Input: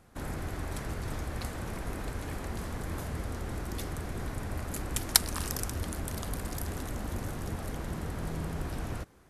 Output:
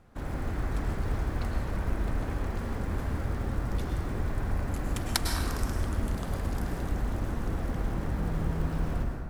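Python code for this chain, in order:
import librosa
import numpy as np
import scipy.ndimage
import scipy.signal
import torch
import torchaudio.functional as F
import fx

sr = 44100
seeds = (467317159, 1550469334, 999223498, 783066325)

y = fx.lowpass(x, sr, hz=2800.0, slope=6)
y = fx.low_shelf(y, sr, hz=60.0, db=6.5)
y = fx.quant_float(y, sr, bits=4)
y = fx.rev_plate(y, sr, seeds[0], rt60_s=1.7, hf_ratio=0.5, predelay_ms=90, drr_db=1.0)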